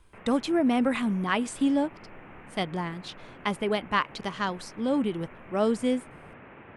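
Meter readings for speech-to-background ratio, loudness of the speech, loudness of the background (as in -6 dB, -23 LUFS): 20.0 dB, -28.0 LUFS, -48.0 LUFS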